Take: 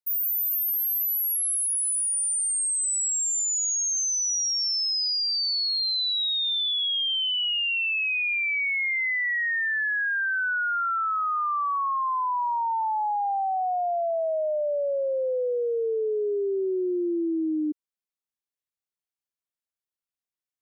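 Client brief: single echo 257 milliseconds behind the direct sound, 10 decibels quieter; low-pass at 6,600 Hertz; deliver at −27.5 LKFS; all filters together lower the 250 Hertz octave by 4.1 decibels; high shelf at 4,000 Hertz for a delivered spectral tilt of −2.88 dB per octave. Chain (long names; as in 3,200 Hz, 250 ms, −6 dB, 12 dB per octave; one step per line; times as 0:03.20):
low-pass filter 6,600 Hz
parametric band 250 Hz −7 dB
high-shelf EQ 4,000 Hz +7.5 dB
single-tap delay 257 ms −10 dB
level −5 dB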